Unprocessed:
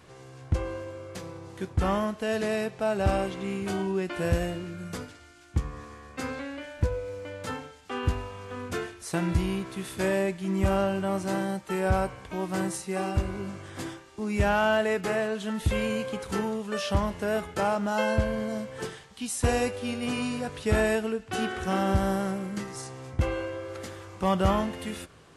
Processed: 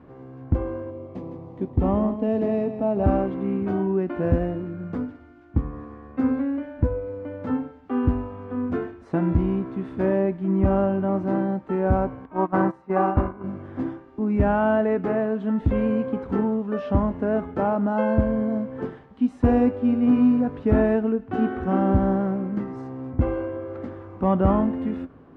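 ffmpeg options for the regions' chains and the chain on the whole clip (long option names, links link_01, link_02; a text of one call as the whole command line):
ffmpeg -i in.wav -filter_complex "[0:a]asettb=1/sr,asplit=3[link_01][link_02][link_03];[link_01]atrim=end=0.904[link_04];[link_02]atrim=start=0.9:end=3.04,asetpts=PTS-STARTPTS,afade=type=in:duration=0.004:curve=qsin,afade=type=out:start_time=2.136:duration=0.004:curve=qsin,equalizer=frequency=1500:width=2.8:gain=-13,aecho=1:1:159:0.316,atrim=end_sample=94374[link_05];[link_03]atrim=start=3.036[link_06];[link_04][link_05]acrossfade=duration=0.004:curve1=hsin:curve2=qsin[link_07];[link_07][link_06]acrossfade=duration=0.004:curve1=qsin:curve2=hsin,asettb=1/sr,asplit=3[link_08][link_09][link_10];[link_08]atrim=end=12.254[link_11];[link_09]atrim=start=12.25:end=13.44,asetpts=PTS-STARTPTS,afade=type=in:duration=0.004:curve=qsin,afade=type=out:start_time=1.186:duration=0.004:curve=qsin,agate=range=-15dB:threshold=-32dB:ratio=16:release=100:detection=peak,equalizer=frequency=1100:width=0.8:gain=12.5[link_12];[link_10]atrim=start=13.436[link_13];[link_11][link_12]acrossfade=duration=0.004:curve1=hsin:curve2=qsin[link_14];[link_14][link_13]acrossfade=duration=0.004:curve1=qsin:curve2=hsin,lowpass=1100,equalizer=frequency=260:width_type=o:width=0.38:gain=13.5,volume=3.5dB" out.wav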